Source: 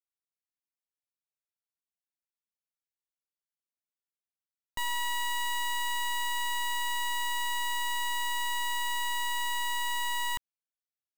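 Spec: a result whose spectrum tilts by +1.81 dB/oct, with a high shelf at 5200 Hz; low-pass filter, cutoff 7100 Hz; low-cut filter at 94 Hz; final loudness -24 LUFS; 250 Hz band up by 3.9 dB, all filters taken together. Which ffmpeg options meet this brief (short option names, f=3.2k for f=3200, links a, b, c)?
-af "highpass=94,lowpass=7.1k,equalizer=f=250:t=o:g=6,highshelf=f=5.2k:g=-5.5,volume=8.5dB"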